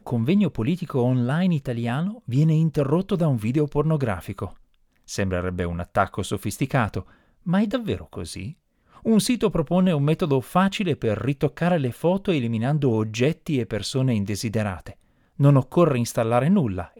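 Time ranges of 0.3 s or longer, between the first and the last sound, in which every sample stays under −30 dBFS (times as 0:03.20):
0:04.48–0:05.10
0:07.01–0:07.47
0:08.50–0:09.06
0:14.90–0:15.40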